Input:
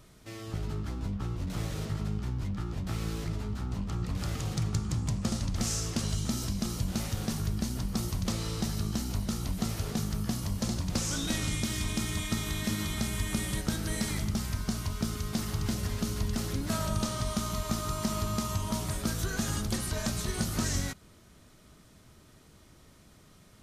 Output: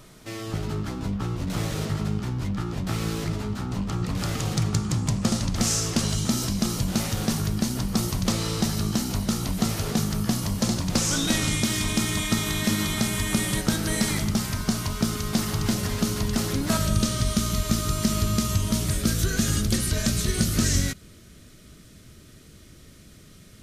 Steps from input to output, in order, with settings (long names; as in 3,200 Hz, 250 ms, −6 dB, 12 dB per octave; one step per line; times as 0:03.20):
parametric band 62 Hz −13 dB 0.84 octaves, from 0:16.77 890 Hz
level +8.5 dB